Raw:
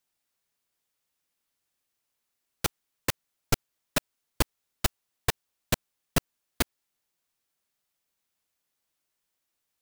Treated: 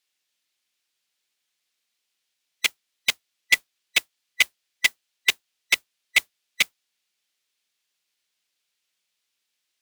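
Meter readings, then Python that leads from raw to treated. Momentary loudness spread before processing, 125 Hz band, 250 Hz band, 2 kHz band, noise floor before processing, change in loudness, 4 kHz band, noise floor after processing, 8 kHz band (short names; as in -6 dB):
2 LU, under -20 dB, -14.5 dB, +14.5 dB, -82 dBFS, +8.5 dB, +11.0 dB, -79 dBFS, +4.5 dB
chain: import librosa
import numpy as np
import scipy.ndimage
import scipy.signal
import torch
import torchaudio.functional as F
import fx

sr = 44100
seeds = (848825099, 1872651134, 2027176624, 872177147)

y = fx.band_swap(x, sr, width_hz=2000)
y = fx.weighting(y, sr, curve='D')
y = fx.mod_noise(y, sr, seeds[0], snr_db=21)
y = y * librosa.db_to_amplitude(-2.5)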